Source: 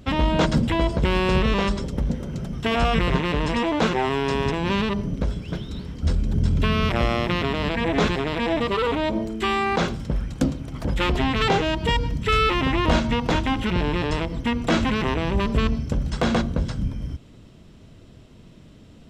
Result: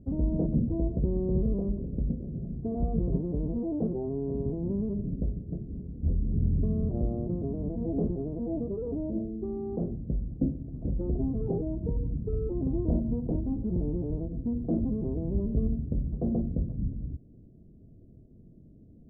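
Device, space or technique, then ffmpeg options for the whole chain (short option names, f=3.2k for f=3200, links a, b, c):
under water: -af "lowpass=f=410:w=0.5412,lowpass=f=410:w=1.3066,equalizer=f=680:t=o:w=0.39:g=8,volume=-5.5dB"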